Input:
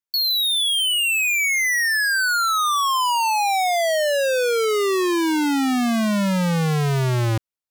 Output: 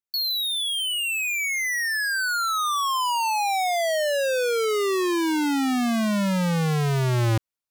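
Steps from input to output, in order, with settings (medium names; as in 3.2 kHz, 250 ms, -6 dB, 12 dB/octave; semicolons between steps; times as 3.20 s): gain riding within 5 dB 0.5 s; trim -4 dB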